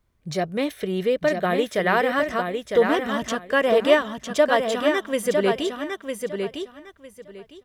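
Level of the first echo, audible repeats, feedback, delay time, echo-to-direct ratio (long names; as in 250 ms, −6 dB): −5.5 dB, 3, 20%, 955 ms, −5.5 dB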